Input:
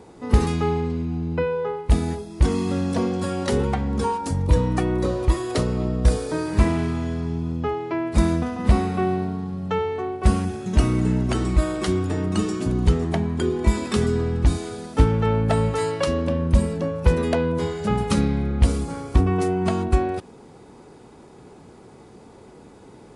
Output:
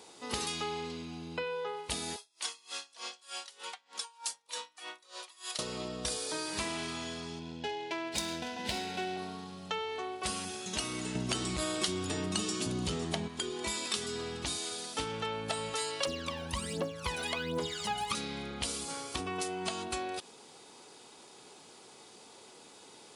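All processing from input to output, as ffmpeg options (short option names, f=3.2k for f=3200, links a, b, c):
-filter_complex "[0:a]asettb=1/sr,asplit=3[a][b][c];[a]atrim=end=2.164[d];[b]atrim=start=2.16:end=5.59,asetpts=PTS-STARTPTS,afade=t=in:d=0.004:c=qsin,afade=t=out:st=3.426:d=0.004:c=qsin,highpass=940,aeval=exprs='val(0)*pow(10,-28*(0.5-0.5*cos(2*PI*3.3*n/s))/20)':c=same[e];[c]atrim=start=5.586[f];[d][e]acrossfade=d=0.004:c1=hsin:c2=qsin[g];[g][f]acrossfade=d=0.004:c1=qsin:c2=hsin,asettb=1/sr,asplit=3[h][i][j];[h]atrim=end=7.394[k];[i]atrim=start=7.39:end=9.17,asetpts=PTS-STARTPTS,afade=t=in:d=0.004:c=qsin,afade=t=out:st=1.776:d=0.004:c=qsin,highshelf=f=4.1k:g=11,adynamicsmooth=sensitivity=3.5:basefreq=2.5k,asuperstop=centerf=1200:order=20:qfactor=5.4[l];[j]atrim=start=9.166[m];[k][l]acrossfade=d=0.004:c1=hsin:c2=qsin[n];[n][m]acrossfade=d=0.004:c1=qsin:c2=hsin,asettb=1/sr,asplit=3[o][p][q];[o]atrim=end=11.154[r];[p]atrim=start=11.15:end=13.28,asetpts=PTS-STARTPTS,afade=t=in:d=0.004:c=qsin,afade=t=out:st=2.126:d=0.004:c=qsin,equalizer=f=120:t=o:w=2.5:g=9.5,acontrast=25[s];[q]atrim=start=13.276[t];[r][s]acrossfade=d=0.004:c1=hsin:c2=qsin[u];[u][t]acrossfade=d=0.004:c1=qsin:c2=hsin,asettb=1/sr,asplit=3[v][w][x];[v]atrim=end=16.054[y];[w]atrim=start=16.05:end=18.15,asetpts=PTS-STARTPTS,afade=t=in:d=0.004:c=qsin,afade=t=out:st=2.096:d=0.004:c=qsin,acrossover=split=3300[z][aa];[aa]acompressor=threshold=-45dB:ratio=4:attack=1:release=60[ab];[z][ab]amix=inputs=2:normalize=0,aphaser=in_gain=1:out_gain=1:delay=1.4:decay=0.74:speed=1.3:type=triangular[ac];[x]atrim=start=18.146[ad];[y][ac]acrossfade=d=0.004:c1=hsin:c2=qsin[ae];[ae][ad]acrossfade=d=0.004:c1=qsin:c2=hsin,highpass=f=1.4k:p=1,highshelf=f=2.5k:t=q:w=1.5:g=6,acompressor=threshold=-34dB:ratio=2.5"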